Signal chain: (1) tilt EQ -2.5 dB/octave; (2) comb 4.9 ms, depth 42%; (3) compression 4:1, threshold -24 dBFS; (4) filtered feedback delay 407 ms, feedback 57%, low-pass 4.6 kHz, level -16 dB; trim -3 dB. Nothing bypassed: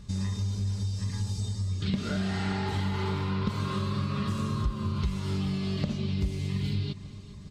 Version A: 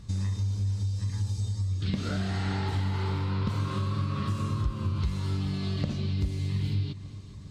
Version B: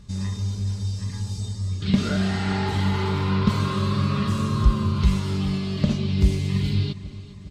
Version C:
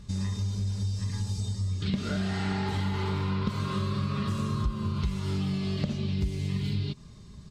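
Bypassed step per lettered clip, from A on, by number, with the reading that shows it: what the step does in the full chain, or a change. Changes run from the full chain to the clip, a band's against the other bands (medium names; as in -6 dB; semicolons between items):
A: 2, 125 Hz band +4.0 dB; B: 3, mean gain reduction 5.5 dB; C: 4, echo-to-direct -15.0 dB to none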